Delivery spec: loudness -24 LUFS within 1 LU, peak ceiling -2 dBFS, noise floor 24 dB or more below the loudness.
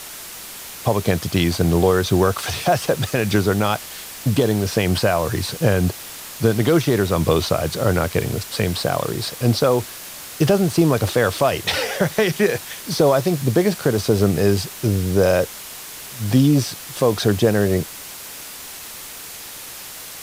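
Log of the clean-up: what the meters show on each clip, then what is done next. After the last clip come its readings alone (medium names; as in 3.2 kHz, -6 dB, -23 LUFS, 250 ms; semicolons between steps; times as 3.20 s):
noise floor -36 dBFS; noise floor target -44 dBFS; loudness -19.5 LUFS; peak level -5.0 dBFS; loudness target -24.0 LUFS
-> noise reduction 8 dB, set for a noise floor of -36 dBFS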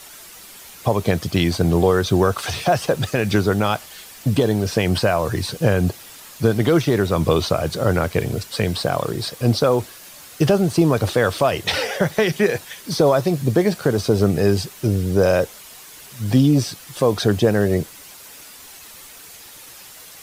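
noise floor -42 dBFS; noise floor target -44 dBFS
-> noise reduction 6 dB, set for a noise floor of -42 dBFS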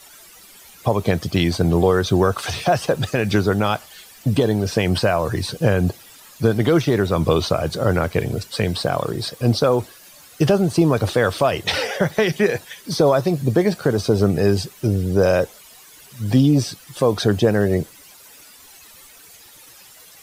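noise floor -46 dBFS; loudness -19.5 LUFS; peak level -5.0 dBFS; loudness target -24.0 LUFS
-> trim -4.5 dB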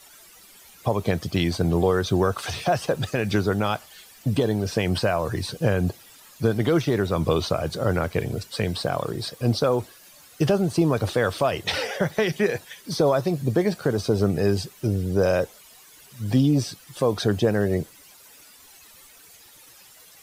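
loudness -24.0 LUFS; peak level -9.5 dBFS; noise floor -50 dBFS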